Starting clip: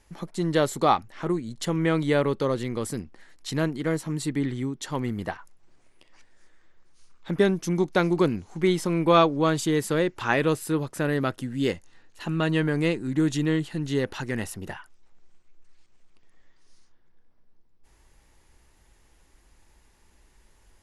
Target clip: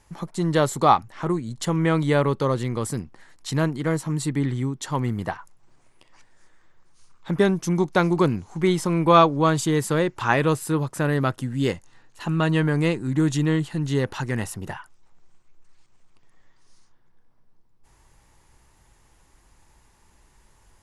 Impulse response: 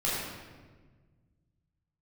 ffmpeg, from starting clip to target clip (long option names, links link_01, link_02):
-af "equalizer=frequency=125:width_type=o:width=1:gain=7,equalizer=frequency=1000:width_type=o:width=1:gain=6,equalizer=frequency=8000:width_type=o:width=1:gain=4"